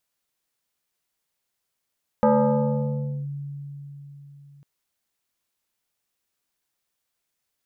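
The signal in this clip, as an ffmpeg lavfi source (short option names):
-f lavfi -i "aevalsrc='0.211*pow(10,-3*t/4.21)*sin(2*PI*142*t+2.3*clip(1-t/1.04,0,1)*sin(2*PI*2.54*142*t))':d=2.4:s=44100"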